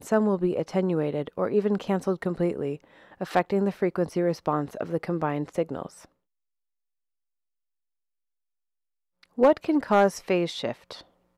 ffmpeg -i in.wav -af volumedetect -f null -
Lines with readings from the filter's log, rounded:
mean_volume: -27.5 dB
max_volume: -10.9 dB